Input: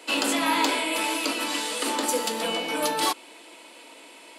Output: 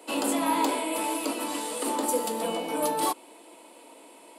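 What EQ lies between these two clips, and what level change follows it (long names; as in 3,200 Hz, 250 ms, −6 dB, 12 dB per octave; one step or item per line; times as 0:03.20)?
flat-topped bell 3,000 Hz −9.5 dB 2.6 octaves
0.0 dB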